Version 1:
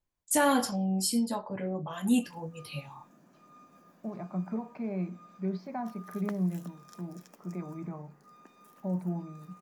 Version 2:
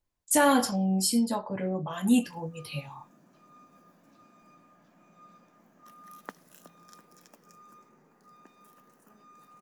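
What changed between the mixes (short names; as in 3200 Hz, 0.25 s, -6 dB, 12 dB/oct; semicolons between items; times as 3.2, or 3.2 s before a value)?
first voice +3.0 dB; second voice: muted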